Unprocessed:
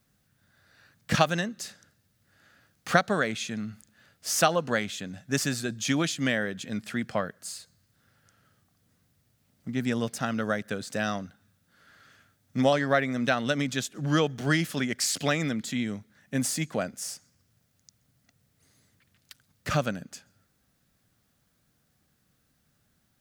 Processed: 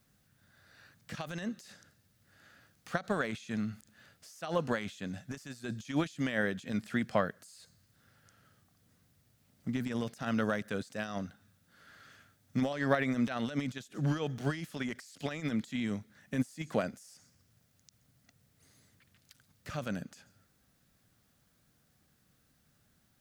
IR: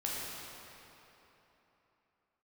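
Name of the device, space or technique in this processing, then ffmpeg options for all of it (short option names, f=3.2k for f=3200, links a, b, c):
de-esser from a sidechain: -filter_complex "[0:a]asplit=2[a][b];[b]highpass=f=4.7k:w=0.5412,highpass=f=4.7k:w=1.3066,apad=whole_len=1023197[c];[a][c]sidechaincompress=threshold=-52dB:ratio=16:attack=1.7:release=43"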